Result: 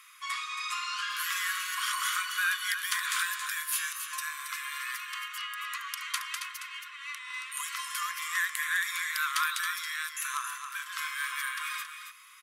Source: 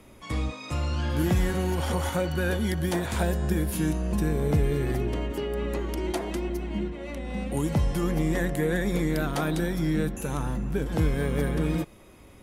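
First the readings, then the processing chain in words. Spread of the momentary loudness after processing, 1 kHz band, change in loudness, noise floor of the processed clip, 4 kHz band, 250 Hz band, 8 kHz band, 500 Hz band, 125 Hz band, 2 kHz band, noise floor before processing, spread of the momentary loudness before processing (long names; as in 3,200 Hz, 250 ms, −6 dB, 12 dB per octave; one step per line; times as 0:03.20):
9 LU, +1.0 dB, −4.0 dB, −46 dBFS, +6.0 dB, below −40 dB, +6.0 dB, below −40 dB, below −40 dB, +6.0 dB, −50 dBFS, 6 LU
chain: linear-phase brick-wall high-pass 1,000 Hz
on a send: single-tap delay 274 ms −8 dB
on the sum: level +5.5 dB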